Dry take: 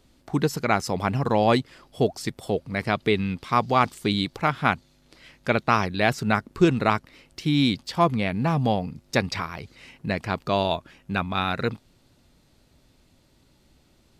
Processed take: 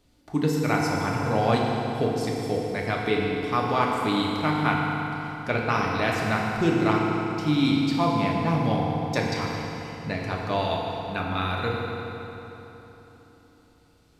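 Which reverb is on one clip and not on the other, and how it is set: FDN reverb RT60 3.6 s, high-frequency decay 0.75×, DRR -2.5 dB; gain -5.5 dB

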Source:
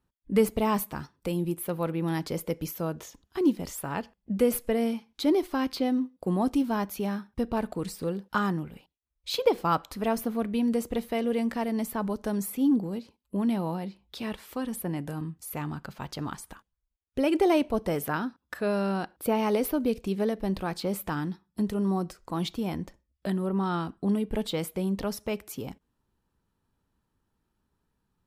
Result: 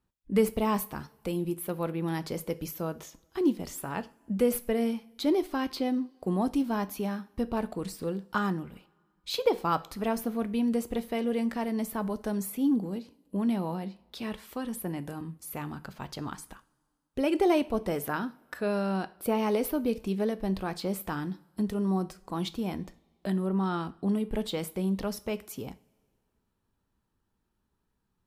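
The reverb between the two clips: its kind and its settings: two-slope reverb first 0.36 s, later 2 s, from -21 dB, DRR 13 dB; gain -2 dB

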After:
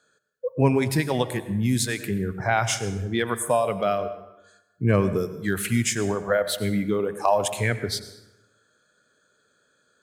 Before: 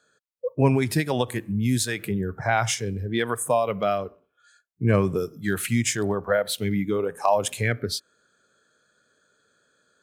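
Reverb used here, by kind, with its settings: plate-style reverb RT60 1 s, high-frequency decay 0.65×, pre-delay 80 ms, DRR 12 dB

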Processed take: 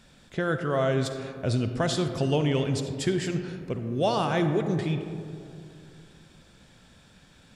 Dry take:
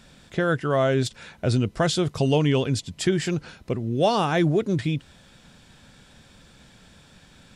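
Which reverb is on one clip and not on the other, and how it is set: digital reverb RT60 2.6 s, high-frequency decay 0.3×, pre-delay 15 ms, DRR 7 dB; gain -4.5 dB

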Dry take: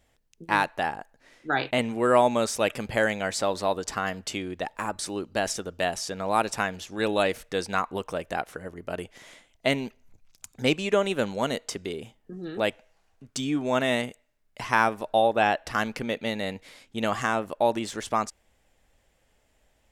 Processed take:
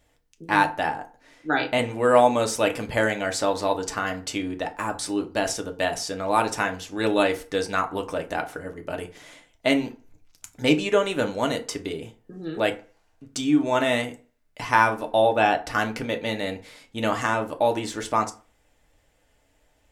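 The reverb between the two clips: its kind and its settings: FDN reverb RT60 0.36 s, low-frequency decay 1×, high-frequency decay 0.6×, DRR 4 dB; gain +1 dB

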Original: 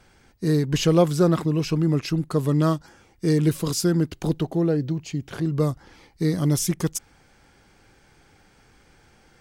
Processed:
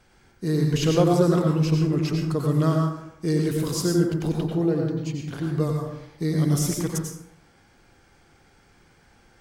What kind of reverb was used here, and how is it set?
plate-style reverb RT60 0.77 s, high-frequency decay 0.55×, pre-delay 80 ms, DRR 0.5 dB; gain -3.5 dB

